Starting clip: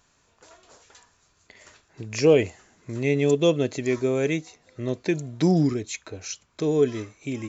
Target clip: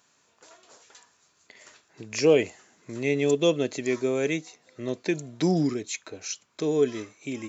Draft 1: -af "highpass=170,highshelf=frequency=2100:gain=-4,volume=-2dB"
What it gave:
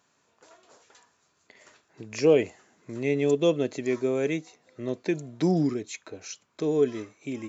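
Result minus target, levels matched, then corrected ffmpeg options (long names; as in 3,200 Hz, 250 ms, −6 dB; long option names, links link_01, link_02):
4,000 Hz band −5.0 dB
-af "highpass=170,highshelf=frequency=2100:gain=3,volume=-2dB"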